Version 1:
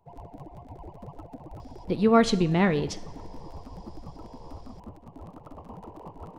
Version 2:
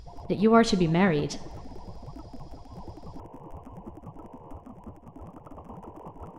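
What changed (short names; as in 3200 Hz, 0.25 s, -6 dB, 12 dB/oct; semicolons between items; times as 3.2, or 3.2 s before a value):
speech: entry -1.60 s; background: add Butterworth band-stop 4100 Hz, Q 1.8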